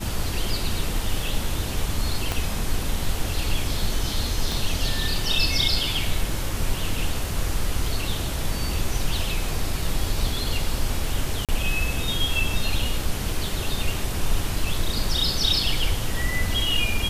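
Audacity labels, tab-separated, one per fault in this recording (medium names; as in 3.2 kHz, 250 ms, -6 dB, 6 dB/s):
2.320000	2.320000	pop -9 dBFS
4.520000	4.520000	pop
11.450000	11.490000	dropout 37 ms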